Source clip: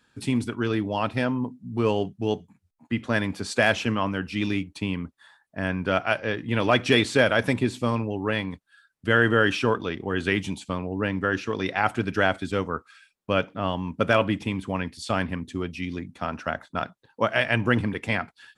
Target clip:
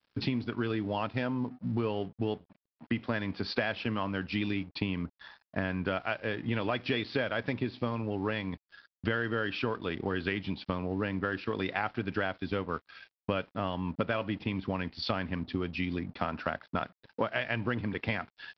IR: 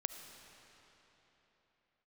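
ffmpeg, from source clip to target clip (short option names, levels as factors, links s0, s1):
-af "acompressor=threshold=0.0178:ratio=6,aresample=11025,aeval=exprs='sgn(val(0))*max(abs(val(0))-0.001,0)':c=same,aresample=44100,volume=2.11"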